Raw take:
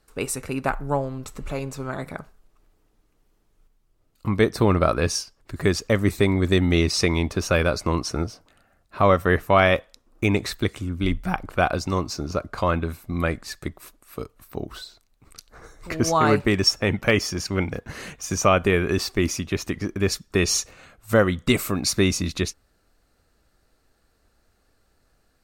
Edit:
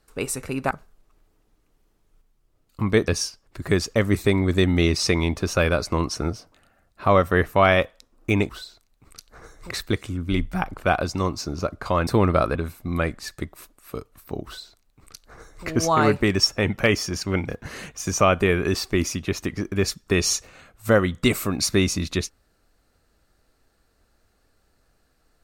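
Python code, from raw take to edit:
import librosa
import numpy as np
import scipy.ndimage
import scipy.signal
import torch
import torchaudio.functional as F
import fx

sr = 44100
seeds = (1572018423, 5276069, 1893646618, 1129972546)

y = fx.edit(x, sr, fx.cut(start_s=0.71, length_s=1.46),
    fx.move(start_s=4.54, length_s=0.48, to_s=12.79),
    fx.duplicate(start_s=14.69, length_s=1.22, to_s=10.43), tone=tone)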